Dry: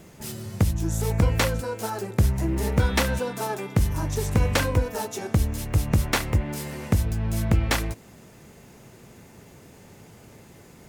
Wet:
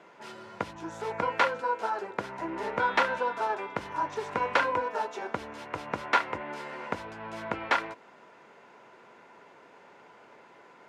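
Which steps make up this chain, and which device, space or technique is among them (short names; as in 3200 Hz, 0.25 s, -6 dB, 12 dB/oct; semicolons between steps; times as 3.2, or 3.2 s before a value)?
1.27–2.39 HPF 120 Hz; tin-can telephone (BPF 500–2600 Hz; small resonant body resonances 990/1400 Hz, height 11 dB, ringing for 45 ms)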